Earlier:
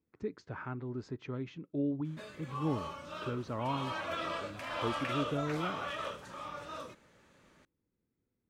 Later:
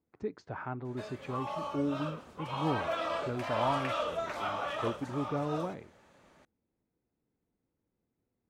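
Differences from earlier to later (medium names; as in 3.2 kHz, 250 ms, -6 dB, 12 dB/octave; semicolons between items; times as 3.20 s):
background: entry -1.20 s; master: add peaking EQ 740 Hz +8.5 dB 0.79 oct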